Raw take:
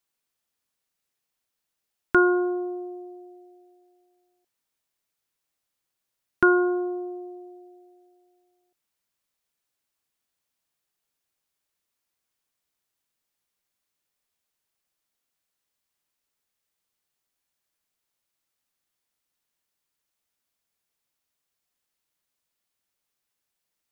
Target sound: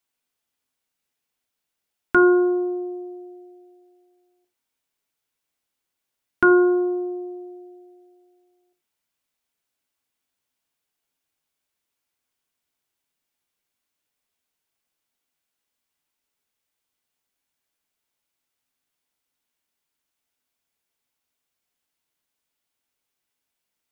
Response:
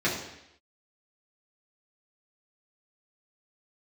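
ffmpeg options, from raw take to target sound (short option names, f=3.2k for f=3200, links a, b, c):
-filter_complex "[0:a]asplit=2[a][b];[b]aresample=8000,aresample=44100[c];[1:a]atrim=start_sample=2205,afade=t=out:st=0.17:d=0.01,atrim=end_sample=7938,asetrate=57330,aresample=44100[d];[c][d]afir=irnorm=-1:irlink=0,volume=-16dB[e];[a][e]amix=inputs=2:normalize=0"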